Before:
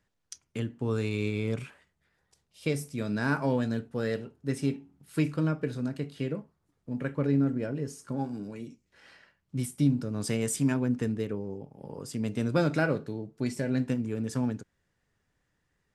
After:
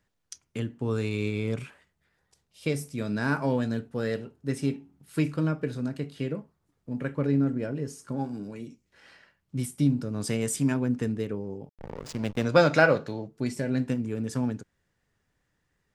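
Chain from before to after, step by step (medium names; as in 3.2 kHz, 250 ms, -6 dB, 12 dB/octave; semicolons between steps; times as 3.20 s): 11.77–13.28 s: time-frequency box 470–7400 Hz +8 dB; 11.69–12.45 s: hysteresis with a dead band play -29.5 dBFS; trim +1 dB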